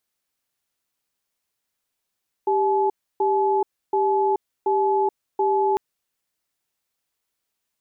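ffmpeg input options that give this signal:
-f lavfi -i "aevalsrc='0.1*(sin(2*PI*393*t)+sin(2*PI*856*t))*clip(min(mod(t,0.73),0.43-mod(t,0.73))/0.005,0,1)':d=3.3:s=44100"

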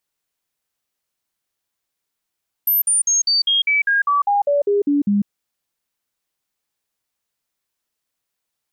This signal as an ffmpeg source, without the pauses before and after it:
-f lavfi -i "aevalsrc='0.211*clip(min(mod(t,0.2),0.15-mod(t,0.2))/0.005,0,1)*sin(2*PI*13000*pow(2,-floor(t/0.2)/2)*mod(t,0.2))':d=2.6:s=44100"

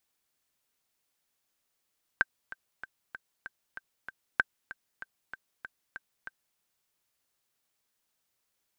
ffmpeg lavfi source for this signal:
-f lavfi -i "aevalsrc='pow(10,(-9.5-17.5*gte(mod(t,7*60/192),60/192))/20)*sin(2*PI*1560*mod(t,60/192))*exp(-6.91*mod(t,60/192)/0.03)':d=4.37:s=44100"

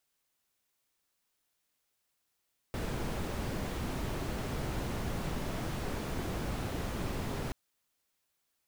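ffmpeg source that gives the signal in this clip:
-f lavfi -i "anoisesrc=c=brown:a=0.0832:d=4.78:r=44100:seed=1"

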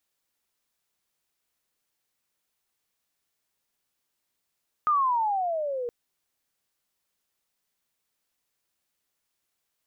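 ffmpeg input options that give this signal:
-f lavfi -i "aevalsrc='pow(10,(-19-9.5*t/1.02)/20)*sin(2*PI*1250*1.02/(-17*log(2)/12)*(exp(-17*log(2)/12*t/1.02)-1))':d=1.02:s=44100"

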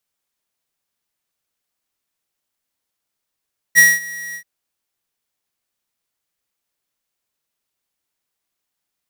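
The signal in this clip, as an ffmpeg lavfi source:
-f lavfi -i "aevalsrc='0.422*(2*lt(mod(1910*t,1),0.5)-1)':d=0.682:s=44100,afade=t=in:d=0.035,afade=t=out:st=0.035:d=0.208:silence=0.0794,afade=t=out:st=0.6:d=0.082"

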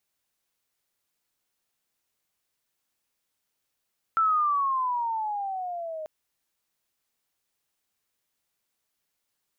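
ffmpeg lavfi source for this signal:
-f lavfi -i "aevalsrc='pow(10,(-19-13.5*t/1.89)/20)*sin(2*PI*1340*1.89/(-13.5*log(2)/12)*(exp(-13.5*log(2)/12*t/1.89)-1))':d=1.89:s=44100"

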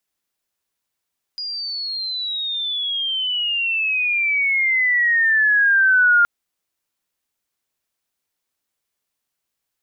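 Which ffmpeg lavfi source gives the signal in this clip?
-f lavfi -i "aevalsrc='pow(10,(-25+14.5*t/4.87)/20)*sin(2*PI*4900*4.87/log(1400/4900)*(exp(log(1400/4900)*t/4.87)-1))':d=4.87:s=44100"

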